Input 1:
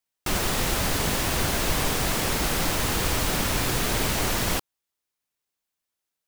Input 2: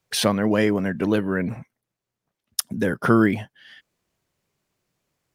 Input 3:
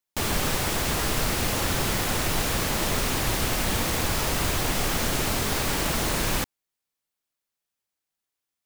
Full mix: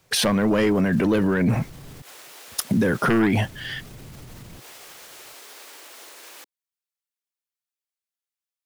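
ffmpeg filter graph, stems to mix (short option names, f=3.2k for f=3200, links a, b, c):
-filter_complex "[0:a]equalizer=f=130:w=1.8:g=10.5,volume=-9.5dB,asplit=3[a][b][c];[a]atrim=end=2.02,asetpts=PTS-STARTPTS,afade=t=out:st=2.016:d=0.004:c=hsin[d];[b]atrim=start=2.02:end=3.21,asetpts=PTS-STARTPTS,volume=0[e];[c]atrim=start=3.21,asetpts=PTS-STARTPTS,afade=t=in:d=0.004:c=hsin[f];[d][e][f]concat=n=3:v=0:a=1[g];[1:a]aeval=exprs='0.841*sin(PI/2*2.82*val(0)/0.841)':c=same,alimiter=limit=-9dB:level=0:latency=1:release=62,volume=1.5dB[h];[2:a]highpass=f=370:w=0.5412,highpass=f=370:w=1.3066,tiltshelf=f=760:g=-5.5,volume=-13dB[i];[g][i]amix=inputs=2:normalize=0,acrossover=split=470[j][k];[k]acompressor=threshold=-40dB:ratio=6[l];[j][l]amix=inputs=2:normalize=0,alimiter=level_in=9.5dB:limit=-24dB:level=0:latency=1:release=75,volume=-9.5dB,volume=0dB[m];[h][m]amix=inputs=2:normalize=0,alimiter=limit=-13.5dB:level=0:latency=1:release=14"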